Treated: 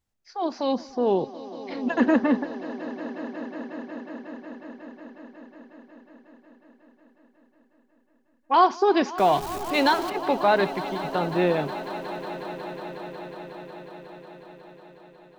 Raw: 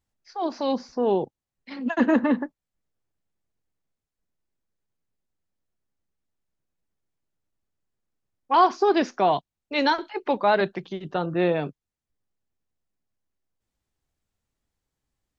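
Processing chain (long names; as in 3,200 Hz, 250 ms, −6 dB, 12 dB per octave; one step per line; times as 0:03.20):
0:09.18–0:10.10: converter with a step at zero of −31 dBFS
echo that builds up and dies away 182 ms, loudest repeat 5, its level −18 dB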